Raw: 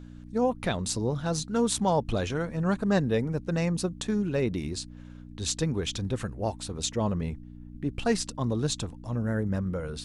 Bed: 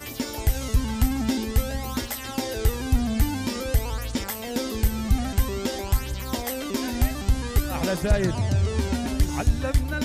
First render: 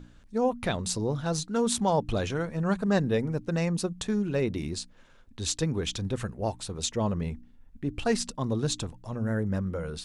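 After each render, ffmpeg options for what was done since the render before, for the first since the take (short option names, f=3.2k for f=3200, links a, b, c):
-af "bandreject=f=60:t=h:w=4,bandreject=f=120:t=h:w=4,bandreject=f=180:t=h:w=4,bandreject=f=240:t=h:w=4,bandreject=f=300:t=h:w=4"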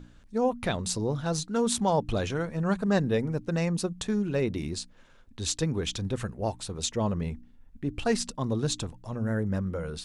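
-af anull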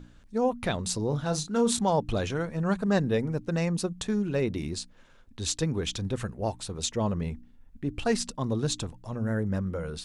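-filter_complex "[0:a]asettb=1/sr,asplit=3[a][b][c];[a]atrim=end=1.084[d];[b]atrim=start=1.08:end=1.79,asetpts=PTS-STARTPTS,afade=t=in:d=0.004:c=qsin,afade=t=out:st=0.706:d=0.004:c=qsin,asplit=2[e][f];[f]adelay=34,volume=-9dB[g];[e][g]amix=inputs=2:normalize=0,atrim=end_sample=31311[h];[c]atrim=start=1.786[i];[d][h]acrossfade=d=0.004:c1=hsin:c2=qsin[j];[j][i]acrossfade=d=0.004:c1=qsin:c2=hsin"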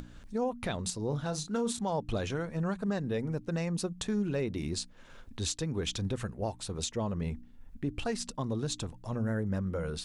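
-af "acompressor=mode=upward:threshold=-40dB:ratio=2.5,alimiter=limit=-23dB:level=0:latency=1:release=327"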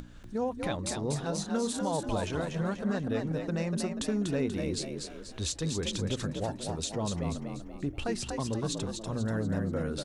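-filter_complex "[0:a]asplit=6[a][b][c][d][e][f];[b]adelay=242,afreqshift=54,volume=-5dB[g];[c]adelay=484,afreqshift=108,volume=-12.5dB[h];[d]adelay=726,afreqshift=162,volume=-20.1dB[i];[e]adelay=968,afreqshift=216,volume=-27.6dB[j];[f]adelay=1210,afreqshift=270,volume=-35.1dB[k];[a][g][h][i][j][k]amix=inputs=6:normalize=0"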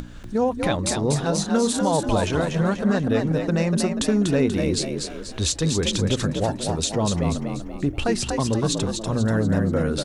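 -af "volume=10dB"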